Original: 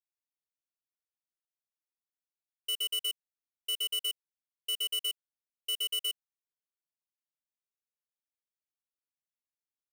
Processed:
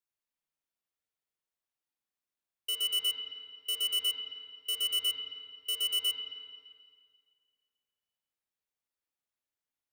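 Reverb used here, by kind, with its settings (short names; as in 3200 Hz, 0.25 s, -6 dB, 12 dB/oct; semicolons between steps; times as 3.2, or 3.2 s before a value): spring tank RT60 1.9 s, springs 41/54 ms, chirp 30 ms, DRR -1 dB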